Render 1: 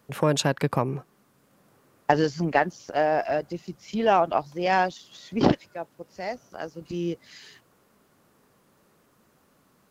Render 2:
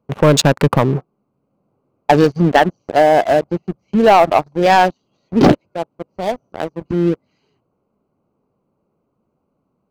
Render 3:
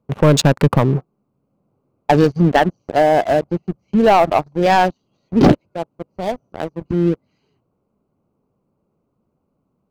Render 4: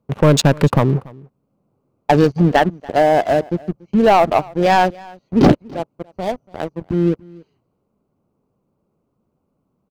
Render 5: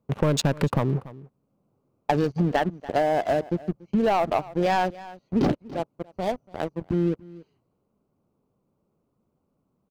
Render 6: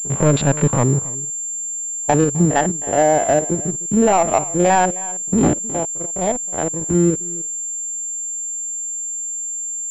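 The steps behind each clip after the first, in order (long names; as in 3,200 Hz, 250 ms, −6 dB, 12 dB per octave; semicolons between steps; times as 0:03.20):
adaptive Wiener filter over 25 samples; leveller curve on the samples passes 3; level +2.5 dB
low-shelf EQ 220 Hz +6 dB; level −3 dB
single-tap delay 286 ms −23.5 dB
downward compressor 6 to 1, threshold −15 dBFS, peak gain reduction 9 dB; level −4 dB
spectrum averaged block by block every 50 ms; switching amplifier with a slow clock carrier 7,300 Hz; level +8.5 dB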